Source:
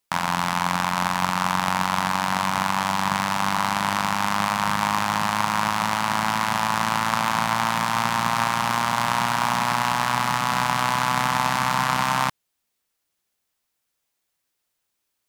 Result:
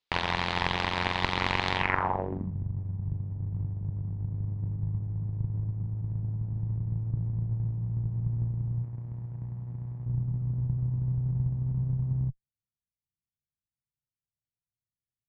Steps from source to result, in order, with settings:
harmonic generator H 4 −6 dB, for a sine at −3.5 dBFS
0:08.83–0:10.06: spectral tilt +2.5 dB per octave
low-pass filter sweep 3,900 Hz → 130 Hz, 0:01.75–0:02.55
level −7.5 dB

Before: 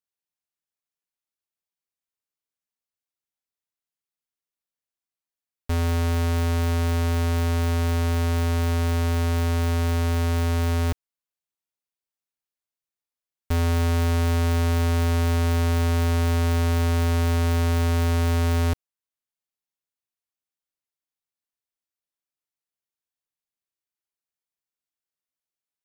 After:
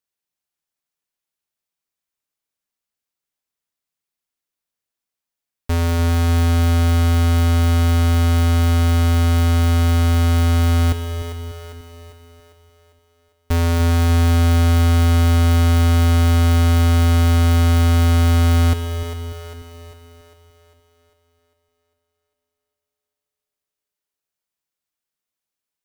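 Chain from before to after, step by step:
echo with a time of its own for lows and highs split 330 Hz, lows 295 ms, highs 400 ms, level −10 dB
four-comb reverb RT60 3.4 s, combs from 27 ms, DRR 13 dB
level +5 dB

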